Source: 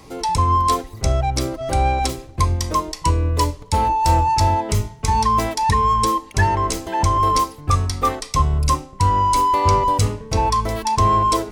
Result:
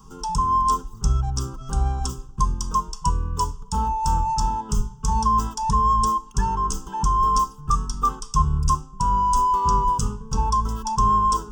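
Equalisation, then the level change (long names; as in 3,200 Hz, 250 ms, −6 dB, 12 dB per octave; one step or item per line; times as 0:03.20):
low-shelf EQ 120 Hz +9.5 dB
phaser with its sweep stopped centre 460 Hz, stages 8
phaser with its sweep stopped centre 2,800 Hz, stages 8
−1.5 dB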